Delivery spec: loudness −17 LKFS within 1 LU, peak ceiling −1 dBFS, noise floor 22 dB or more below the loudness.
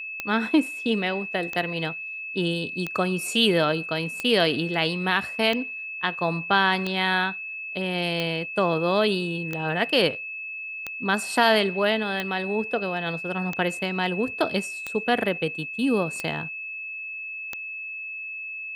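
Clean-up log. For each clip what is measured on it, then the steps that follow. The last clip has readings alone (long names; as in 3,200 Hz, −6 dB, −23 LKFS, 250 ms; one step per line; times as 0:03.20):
number of clicks 14; interfering tone 2,600 Hz; level of the tone −32 dBFS; integrated loudness −25.0 LKFS; sample peak −5.5 dBFS; target loudness −17.0 LKFS
→ click removal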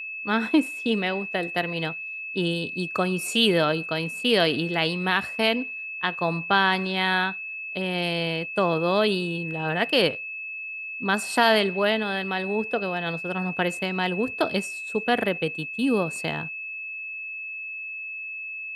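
number of clicks 0; interfering tone 2,600 Hz; level of the tone −32 dBFS
→ notch filter 2,600 Hz, Q 30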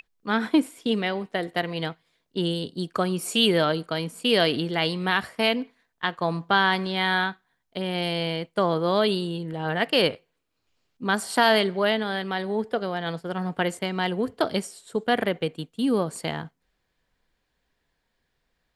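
interfering tone none found; integrated loudness −25.5 LKFS; sample peak −6.0 dBFS; target loudness −17.0 LKFS
→ level +8.5 dB
brickwall limiter −1 dBFS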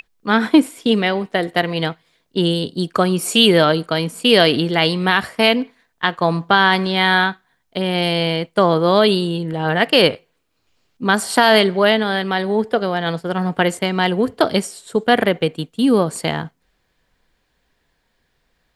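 integrated loudness −17.0 LKFS; sample peak −1.0 dBFS; background noise floor −67 dBFS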